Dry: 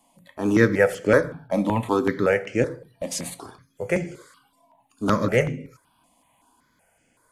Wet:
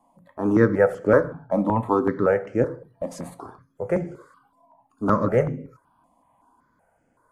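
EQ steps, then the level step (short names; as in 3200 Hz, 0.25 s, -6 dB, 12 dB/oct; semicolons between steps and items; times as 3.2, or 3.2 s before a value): resonant high shelf 1800 Hz -13.5 dB, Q 1.5; 0.0 dB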